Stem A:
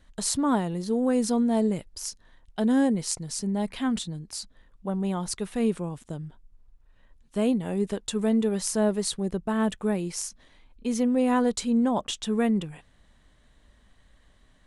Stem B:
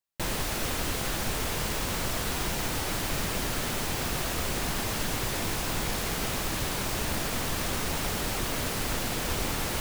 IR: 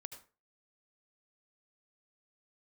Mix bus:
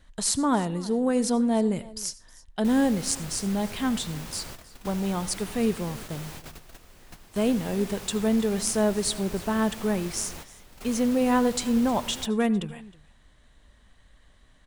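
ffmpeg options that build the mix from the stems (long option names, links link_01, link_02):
-filter_complex "[0:a]equalizer=frequency=280:width_type=o:width=2.6:gain=-2.5,volume=-0.5dB,asplit=4[link_01][link_02][link_03][link_04];[link_02]volume=-3dB[link_05];[link_03]volume=-18.5dB[link_06];[1:a]adelay=2450,volume=-10.5dB[link_07];[link_04]apad=whole_len=540603[link_08];[link_07][link_08]sidechaingate=range=-14dB:threshold=-50dB:ratio=16:detection=peak[link_09];[2:a]atrim=start_sample=2205[link_10];[link_05][link_10]afir=irnorm=-1:irlink=0[link_11];[link_06]aecho=0:1:315:1[link_12];[link_01][link_09][link_11][link_12]amix=inputs=4:normalize=0"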